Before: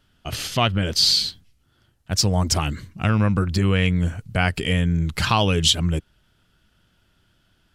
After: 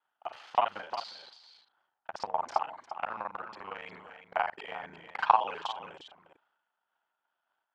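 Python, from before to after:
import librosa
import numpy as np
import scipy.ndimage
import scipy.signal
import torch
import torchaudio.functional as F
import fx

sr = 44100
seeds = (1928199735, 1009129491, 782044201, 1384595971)

y = fx.local_reverse(x, sr, ms=36.0)
y = fx.ladder_bandpass(y, sr, hz=960.0, resonance_pct=60)
y = y + 10.0 ** (-10.0 / 20.0) * np.pad(y, (int(353 * sr / 1000.0), 0))[:len(y)]
y = fx.transient(y, sr, attack_db=12, sustain_db=8)
y = fx.am_noise(y, sr, seeds[0], hz=5.7, depth_pct=60)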